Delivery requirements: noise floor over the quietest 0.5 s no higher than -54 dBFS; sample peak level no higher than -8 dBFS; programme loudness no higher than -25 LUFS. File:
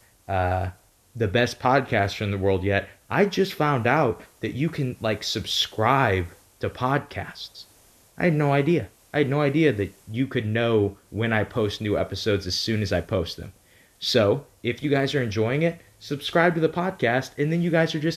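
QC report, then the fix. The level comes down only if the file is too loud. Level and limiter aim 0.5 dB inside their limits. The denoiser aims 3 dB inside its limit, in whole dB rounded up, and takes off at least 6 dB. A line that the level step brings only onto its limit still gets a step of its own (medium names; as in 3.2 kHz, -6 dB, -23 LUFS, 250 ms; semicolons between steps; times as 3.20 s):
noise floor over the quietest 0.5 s -56 dBFS: pass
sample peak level -6.0 dBFS: fail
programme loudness -24.0 LUFS: fail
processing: trim -1.5 dB; peak limiter -8.5 dBFS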